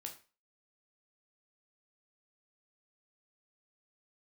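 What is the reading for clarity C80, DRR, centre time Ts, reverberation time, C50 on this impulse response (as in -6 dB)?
16.0 dB, 2.5 dB, 14 ms, 0.35 s, 11.0 dB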